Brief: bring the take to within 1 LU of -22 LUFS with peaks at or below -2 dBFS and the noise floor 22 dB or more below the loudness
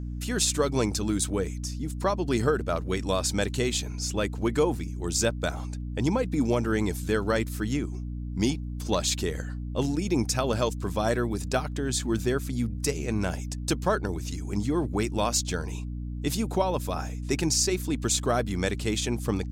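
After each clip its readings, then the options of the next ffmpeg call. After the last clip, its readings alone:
hum 60 Hz; harmonics up to 300 Hz; hum level -31 dBFS; loudness -28.0 LUFS; peak -11.5 dBFS; loudness target -22.0 LUFS
-> -af "bandreject=f=60:t=h:w=6,bandreject=f=120:t=h:w=6,bandreject=f=180:t=h:w=6,bandreject=f=240:t=h:w=6,bandreject=f=300:t=h:w=6"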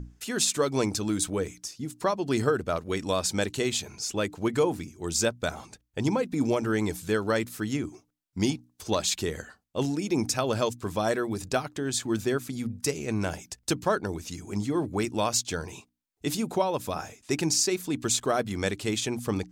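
hum none; loudness -28.5 LUFS; peak -12.0 dBFS; loudness target -22.0 LUFS
-> -af "volume=6.5dB"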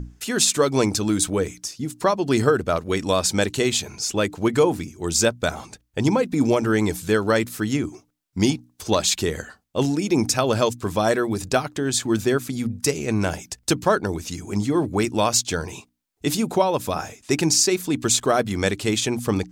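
loudness -22.0 LUFS; peak -5.5 dBFS; noise floor -65 dBFS

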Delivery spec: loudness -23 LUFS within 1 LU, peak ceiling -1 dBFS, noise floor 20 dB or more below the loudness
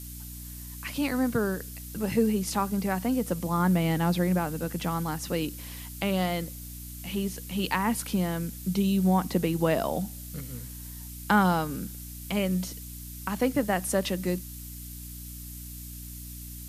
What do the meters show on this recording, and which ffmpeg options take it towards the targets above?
hum 60 Hz; harmonics up to 300 Hz; hum level -40 dBFS; noise floor -41 dBFS; noise floor target -49 dBFS; loudness -28.5 LUFS; peak -9.0 dBFS; loudness target -23.0 LUFS
-> -af "bandreject=f=60:t=h:w=6,bandreject=f=120:t=h:w=6,bandreject=f=180:t=h:w=6,bandreject=f=240:t=h:w=6,bandreject=f=300:t=h:w=6"
-af "afftdn=nr=8:nf=-41"
-af "volume=5.5dB"

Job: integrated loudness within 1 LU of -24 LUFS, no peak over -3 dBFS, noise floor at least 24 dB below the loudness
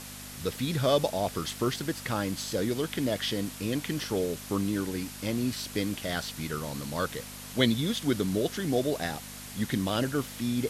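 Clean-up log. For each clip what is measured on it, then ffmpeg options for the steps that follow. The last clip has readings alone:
hum 50 Hz; harmonics up to 250 Hz; hum level -45 dBFS; noise floor -43 dBFS; noise floor target -55 dBFS; loudness -30.5 LUFS; peak -7.5 dBFS; loudness target -24.0 LUFS
-> -af "bandreject=f=50:t=h:w=4,bandreject=f=100:t=h:w=4,bandreject=f=150:t=h:w=4,bandreject=f=200:t=h:w=4,bandreject=f=250:t=h:w=4"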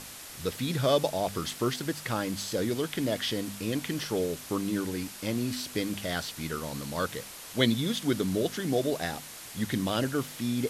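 hum none; noise floor -44 dBFS; noise floor target -55 dBFS
-> -af "afftdn=nr=11:nf=-44"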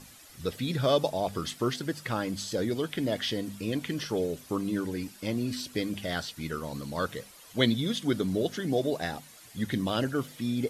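noise floor -52 dBFS; noise floor target -55 dBFS
-> -af "afftdn=nr=6:nf=-52"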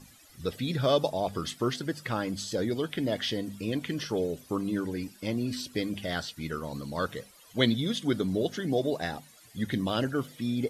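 noise floor -56 dBFS; loudness -31.0 LUFS; peak -7.5 dBFS; loudness target -24.0 LUFS
-> -af "volume=7dB,alimiter=limit=-3dB:level=0:latency=1"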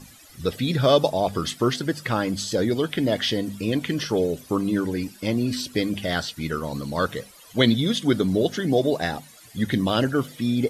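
loudness -24.0 LUFS; peak -3.0 dBFS; noise floor -49 dBFS

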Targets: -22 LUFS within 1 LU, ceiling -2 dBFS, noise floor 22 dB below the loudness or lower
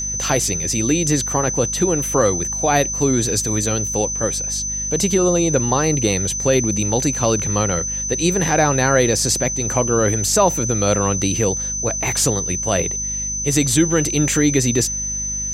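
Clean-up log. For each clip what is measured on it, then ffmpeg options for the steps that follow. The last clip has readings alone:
hum 50 Hz; harmonics up to 250 Hz; hum level -31 dBFS; steady tone 6100 Hz; tone level -22 dBFS; loudness -18.0 LUFS; peak -2.0 dBFS; loudness target -22.0 LUFS
-> -af "bandreject=f=50:t=h:w=6,bandreject=f=100:t=h:w=6,bandreject=f=150:t=h:w=6,bandreject=f=200:t=h:w=6,bandreject=f=250:t=h:w=6"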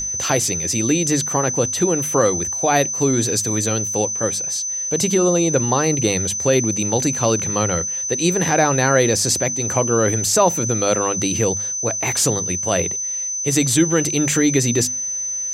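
hum none; steady tone 6100 Hz; tone level -22 dBFS
-> -af "bandreject=f=6.1k:w=30"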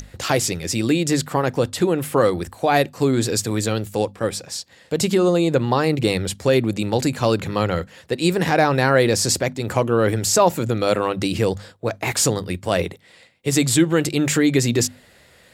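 steady tone none; loudness -20.0 LUFS; peak -2.5 dBFS; loudness target -22.0 LUFS
-> -af "volume=-2dB"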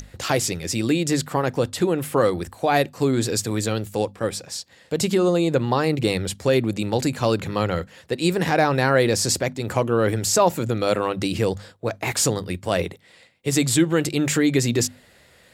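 loudness -22.0 LUFS; peak -4.5 dBFS; noise floor -54 dBFS

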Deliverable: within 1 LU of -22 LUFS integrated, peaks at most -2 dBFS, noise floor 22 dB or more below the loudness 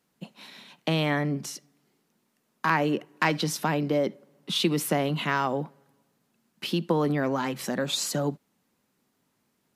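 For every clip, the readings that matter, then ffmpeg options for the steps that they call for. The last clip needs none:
loudness -27.5 LUFS; peak -8.5 dBFS; loudness target -22.0 LUFS
-> -af "volume=5.5dB"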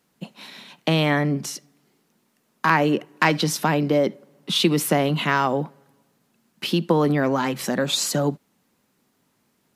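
loudness -22.0 LUFS; peak -3.0 dBFS; noise floor -68 dBFS

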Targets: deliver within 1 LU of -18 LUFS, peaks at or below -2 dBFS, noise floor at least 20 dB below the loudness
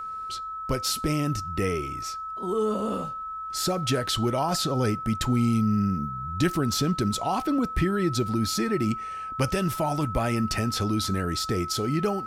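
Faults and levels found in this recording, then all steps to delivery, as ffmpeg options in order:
steady tone 1300 Hz; tone level -32 dBFS; loudness -26.5 LUFS; peak -11.0 dBFS; loudness target -18.0 LUFS
-> -af "bandreject=f=1.3k:w=30"
-af "volume=8.5dB"

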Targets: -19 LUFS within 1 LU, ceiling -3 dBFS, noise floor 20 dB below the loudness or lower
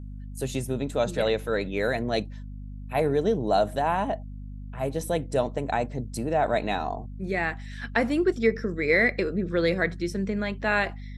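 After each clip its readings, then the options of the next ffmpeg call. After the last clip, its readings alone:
hum 50 Hz; harmonics up to 250 Hz; hum level -36 dBFS; loudness -26.5 LUFS; peak -8.0 dBFS; loudness target -19.0 LUFS
-> -af "bandreject=f=50:t=h:w=4,bandreject=f=100:t=h:w=4,bandreject=f=150:t=h:w=4,bandreject=f=200:t=h:w=4,bandreject=f=250:t=h:w=4"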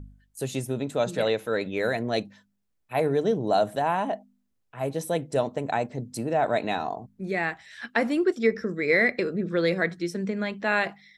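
hum none; loudness -27.0 LUFS; peak -8.5 dBFS; loudness target -19.0 LUFS
-> -af "volume=8dB,alimiter=limit=-3dB:level=0:latency=1"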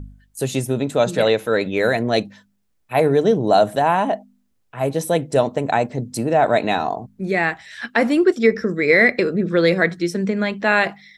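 loudness -19.0 LUFS; peak -3.0 dBFS; noise floor -65 dBFS

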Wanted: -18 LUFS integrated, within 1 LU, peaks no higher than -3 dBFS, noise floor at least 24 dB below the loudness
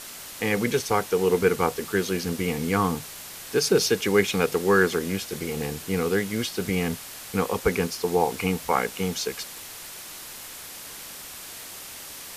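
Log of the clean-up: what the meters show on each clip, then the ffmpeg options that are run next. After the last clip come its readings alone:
noise floor -40 dBFS; noise floor target -49 dBFS; loudness -25.0 LUFS; peak -5.5 dBFS; loudness target -18.0 LUFS
-> -af "afftdn=nr=9:nf=-40"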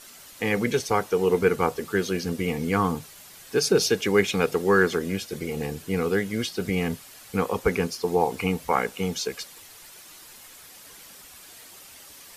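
noise floor -47 dBFS; noise floor target -49 dBFS
-> -af "afftdn=nr=6:nf=-47"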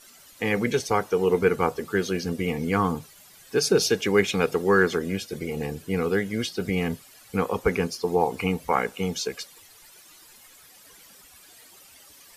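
noise floor -52 dBFS; loudness -25.0 LUFS; peak -6.0 dBFS; loudness target -18.0 LUFS
-> -af "volume=7dB,alimiter=limit=-3dB:level=0:latency=1"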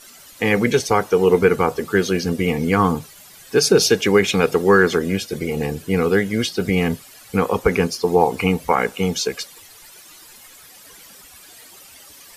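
loudness -18.5 LUFS; peak -3.0 dBFS; noise floor -45 dBFS

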